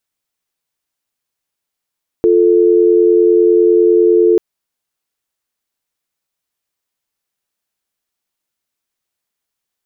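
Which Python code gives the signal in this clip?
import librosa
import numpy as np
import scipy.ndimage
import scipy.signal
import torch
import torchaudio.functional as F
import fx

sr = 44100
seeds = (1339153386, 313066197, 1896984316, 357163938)

y = fx.call_progress(sr, length_s=2.14, kind='dial tone', level_db=-9.5)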